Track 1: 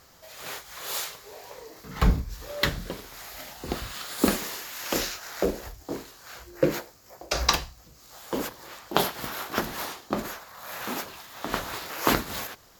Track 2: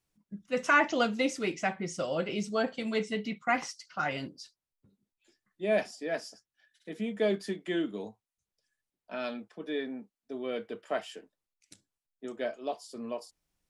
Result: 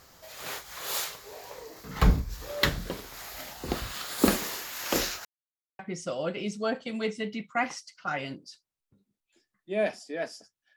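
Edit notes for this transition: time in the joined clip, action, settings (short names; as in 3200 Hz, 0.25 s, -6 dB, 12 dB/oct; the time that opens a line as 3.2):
track 1
5.25–5.79 mute
5.79 switch to track 2 from 1.71 s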